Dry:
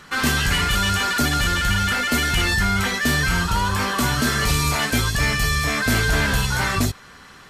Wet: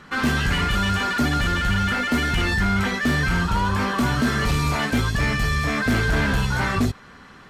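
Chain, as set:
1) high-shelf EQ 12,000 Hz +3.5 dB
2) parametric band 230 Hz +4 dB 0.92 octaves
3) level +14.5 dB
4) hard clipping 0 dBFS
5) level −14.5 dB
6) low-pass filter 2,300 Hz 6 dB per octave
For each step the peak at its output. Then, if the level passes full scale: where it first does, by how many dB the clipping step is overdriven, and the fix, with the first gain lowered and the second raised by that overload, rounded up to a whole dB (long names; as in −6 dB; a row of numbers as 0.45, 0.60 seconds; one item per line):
−10.5, −8.5, +6.0, 0.0, −14.5, −14.5 dBFS
step 3, 6.0 dB
step 3 +8.5 dB, step 5 −8.5 dB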